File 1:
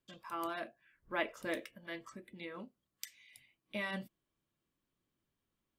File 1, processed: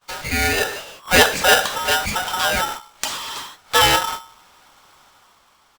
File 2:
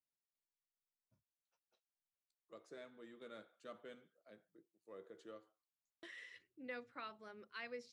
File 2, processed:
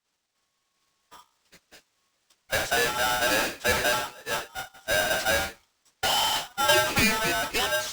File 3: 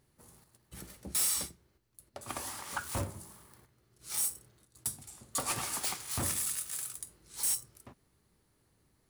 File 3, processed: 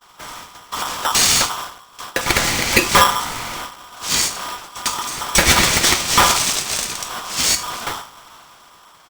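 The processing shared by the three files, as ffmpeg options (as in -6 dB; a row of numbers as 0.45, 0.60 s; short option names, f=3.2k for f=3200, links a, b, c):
-af "aeval=exprs='val(0)+0.5*0.00596*sgn(val(0))':c=same,agate=range=-41dB:threshold=-50dB:ratio=16:detection=peak,bandreject=f=62.9:t=h:w=4,bandreject=f=125.8:t=h:w=4,bandreject=f=188.7:t=h:w=4,bandreject=f=251.6:t=h:w=4,bandreject=f=314.5:t=h:w=4,dynaudnorm=f=110:g=13:m=6dB,apsyclip=21dB,aresample=16000,aresample=44100,aeval=exprs='val(0)*sgn(sin(2*PI*1100*n/s))':c=same,volume=-4dB"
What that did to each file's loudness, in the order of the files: +24.5, +29.0, +17.5 LU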